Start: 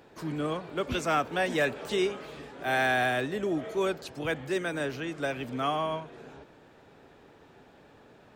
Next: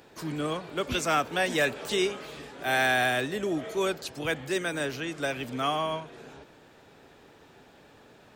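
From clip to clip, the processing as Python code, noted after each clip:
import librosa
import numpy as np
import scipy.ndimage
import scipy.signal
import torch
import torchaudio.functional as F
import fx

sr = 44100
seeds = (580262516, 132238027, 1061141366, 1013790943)

y = fx.high_shelf(x, sr, hz=2800.0, db=8.0)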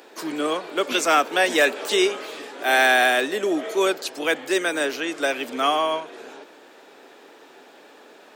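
y = scipy.signal.sosfilt(scipy.signal.butter(4, 280.0, 'highpass', fs=sr, output='sos'), x)
y = F.gain(torch.from_numpy(y), 7.5).numpy()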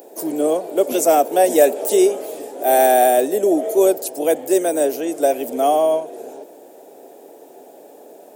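y = fx.curve_eq(x, sr, hz=(230.0, 690.0, 1200.0, 4100.0, 11000.0), db=(0, 6, -16, -13, 11))
y = F.gain(torch.from_numpy(y), 4.0).numpy()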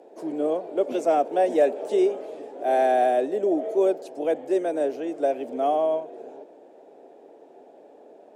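y = scipy.signal.sosfilt(scipy.signal.bessel(2, 2500.0, 'lowpass', norm='mag', fs=sr, output='sos'), x)
y = F.gain(torch.from_numpy(y), -6.5).numpy()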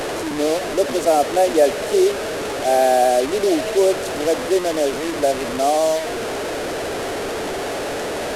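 y = fx.delta_mod(x, sr, bps=64000, step_db=-24.0)
y = F.gain(torch.from_numpy(y), 5.0).numpy()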